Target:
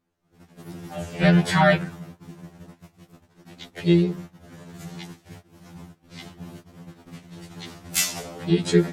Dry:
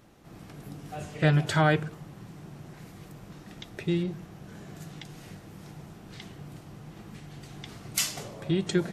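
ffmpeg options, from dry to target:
ffmpeg -i in.wav -filter_complex "[0:a]asplit=2[link_01][link_02];[link_02]asetrate=52444,aresample=44100,atempo=0.840896,volume=-4dB[link_03];[link_01][link_03]amix=inputs=2:normalize=0,agate=range=-25dB:threshold=-42dB:ratio=16:detection=peak,afftfilt=real='re*2*eq(mod(b,4),0)':imag='im*2*eq(mod(b,4),0)':win_size=2048:overlap=0.75,volume=6dB" out.wav

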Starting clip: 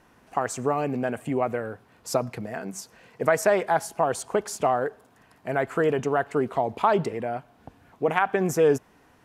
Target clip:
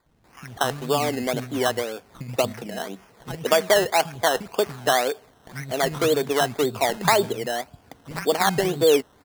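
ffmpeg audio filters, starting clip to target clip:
ffmpeg -i in.wav -filter_complex "[0:a]acrossover=split=210|2000[link_01][link_02][link_03];[link_01]adelay=60[link_04];[link_02]adelay=240[link_05];[link_04][link_05][link_03]amix=inputs=3:normalize=0,aresample=8000,aresample=44100,acrusher=samples=15:mix=1:aa=0.000001:lfo=1:lforange=9:lforate=1.9,volume=3dB" out.wav

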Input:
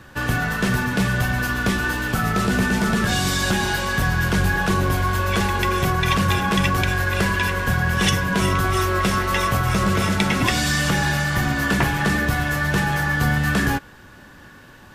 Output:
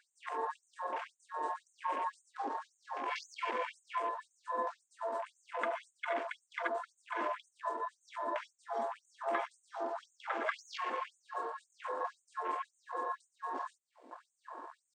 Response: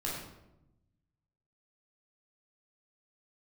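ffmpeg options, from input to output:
-filter_complex "[0:a]asplit=2[link_01][link_02];[1:a]atrim=start_sample=2205,lowpass=3900[link_03];[link_02][link_03]afir=irnorm=-1:irlink=0,volume=-12dB[link_04];[link_01][link_04]amix=inputs=2:normalize=0,asetrate=26990,aresample=44100,atempo=1.63392,acompressor=threshold=-32dB:ratio=4,afwtdn=0.00891,afftfilt=real='re*gte(b*sr/1024,250*pow(6400/250,0.5+0.5*sin(2*PI*1.9*pts/sr)))':imag='im*gte(b*sr/1024,250*pow(6400/250,0.5+0.5*sin(2*PI*1.9*pts/sr)))':win_size=1024:overlap=0.75,volume=1dB"

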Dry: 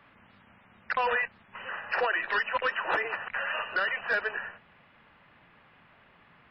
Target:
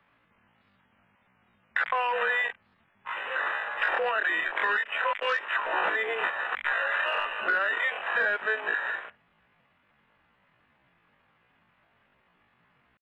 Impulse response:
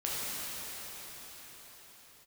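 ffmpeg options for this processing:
-filter_complex "[0:a]atempo=0.5,acrossover=split=330|1700[link_01][link_02][link_03];[link_01]acompressor=threshold=-59dB:ratio=4[link_04];[link_02]acompressor=threshold=-38dB:ratio=4[link_05];[link_03]acompressor=threshold=-40dB:ratio=4[link_06];[link_04][link_05][link_06]amix=inputs=3:normalize=0,afwtdn=0.00562,volume=9dB"

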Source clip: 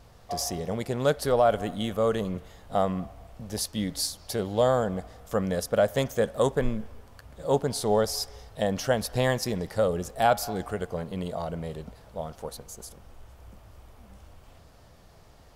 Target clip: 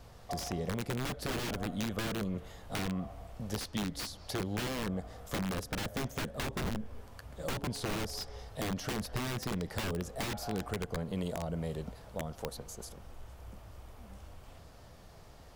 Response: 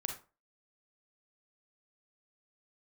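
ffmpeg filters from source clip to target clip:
-filter_complex "[0:a]aeval=exprs='(mod(12.6*val(0)+1,2)-1)/12.6':channel_layout=same,acrossover=split=350|5100[link_01][link_02][link_03];[link_01]acompressor=threshold=-33dB:ratio=4[link_04];[link_02]acompressor=threshold=-39dB:ratio=4[link_05];[link_03]acompressor=threshold=-48dB:ratio=4[link_06];[link_04][link_05][link_06]amix=inputs=3:normalize=0"

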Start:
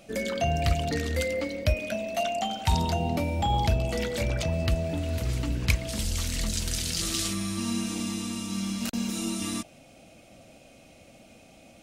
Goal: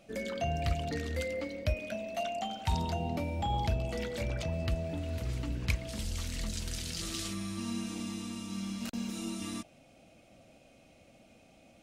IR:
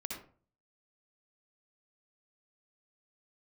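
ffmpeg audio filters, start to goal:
-af "highshelf=frequency=5400:gain=-5.5,volume=-6.5dB"

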